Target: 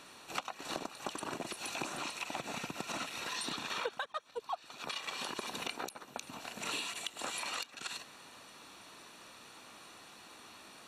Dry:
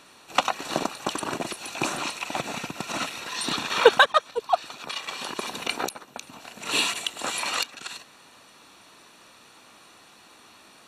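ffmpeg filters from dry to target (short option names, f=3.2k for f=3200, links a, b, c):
-af "acompressor=threshold=-34dB:ratio=8,volume=-2dB"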